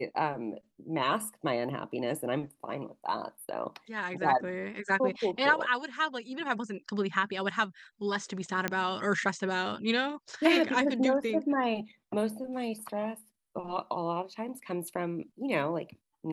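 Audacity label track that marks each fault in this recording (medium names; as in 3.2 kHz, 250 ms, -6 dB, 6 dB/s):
8.680000	8.680000	pop -15 dBFS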